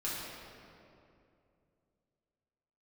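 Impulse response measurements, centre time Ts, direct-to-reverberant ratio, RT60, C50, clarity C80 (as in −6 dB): 145 ms, −8.5 dB, 2.6 s, −2.0 dB, 0.0 dB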